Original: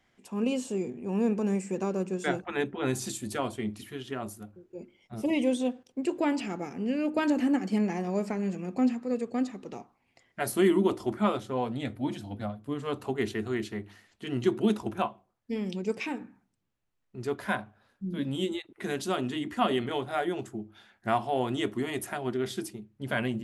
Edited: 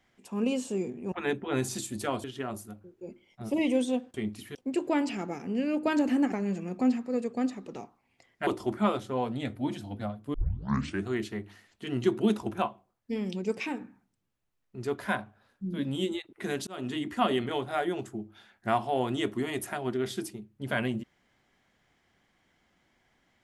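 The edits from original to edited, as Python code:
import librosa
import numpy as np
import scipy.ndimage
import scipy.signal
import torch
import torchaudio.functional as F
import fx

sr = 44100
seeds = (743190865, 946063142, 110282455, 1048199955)

y = fx.edit(x, sr, fx.cut(start_s=1.12, length_s=1.31),
    fx.move(start_s=3.55, length_s=0.41, to_s=5.86),
    fx.cut(start_s=7.63, length_s=0.66),
    fx.cut(start_s=10.44, length_s=0.43),
    fx.tape_start(start_s=12.74, length_s=0.72),
    fx.fade_in_span(start_s=19.07, length_s=0.25), tone=tone)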